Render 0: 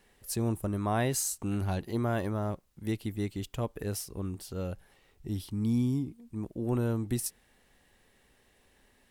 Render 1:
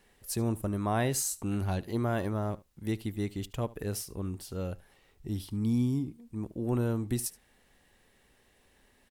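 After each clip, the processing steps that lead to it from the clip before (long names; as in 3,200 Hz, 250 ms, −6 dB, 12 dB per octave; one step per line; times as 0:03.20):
single-tap delay 74 ms −21 dB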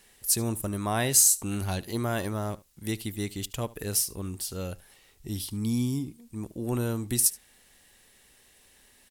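parametric band 11,000 Hz +13.5 dB 3 octaves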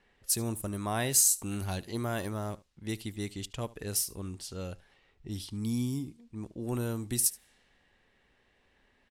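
low-pass that shuts in the quiet parts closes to 2,200 Hz, open at −26 dBFS
level −4 dB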